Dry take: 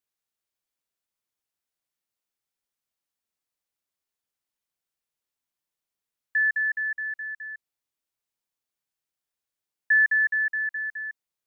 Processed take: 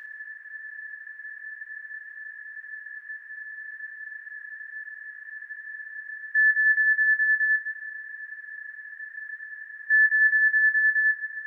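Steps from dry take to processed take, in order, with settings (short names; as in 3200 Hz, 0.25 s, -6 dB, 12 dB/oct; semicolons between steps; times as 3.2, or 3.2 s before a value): per-bin compression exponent 0.2; reverb RT60 2.6 s, pre-delay 8 ms, DRR 0.5 dB; gain -5.5 dB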